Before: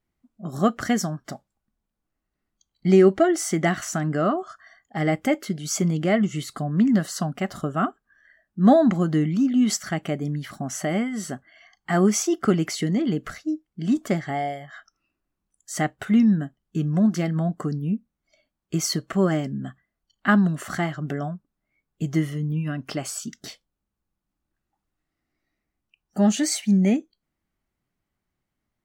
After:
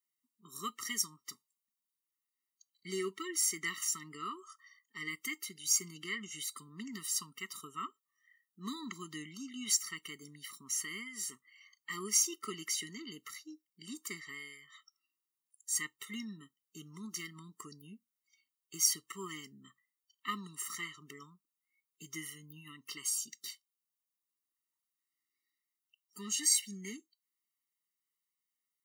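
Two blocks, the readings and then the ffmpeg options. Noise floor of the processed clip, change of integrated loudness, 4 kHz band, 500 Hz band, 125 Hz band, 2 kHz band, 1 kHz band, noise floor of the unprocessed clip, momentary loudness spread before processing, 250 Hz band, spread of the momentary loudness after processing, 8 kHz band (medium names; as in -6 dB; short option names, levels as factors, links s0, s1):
under -85 dBFS, -12.5 dB, -4.5 dB, -25.0 dB, -29.0 dB, -11.0 dB, -18.0 dB, -82 dBFS, 13 LU, -26.0 dB, 21 LU, -1.0 dB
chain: -af "aderivative,acontrast=55,afftfilt=real='re*eq(mod(floor(b*sr/1024/450),2),0)':imag='im*eq(mod(floor(b*sr/1024/450),2),0)':win_size=1024:overlap=0.75,volume=0.708"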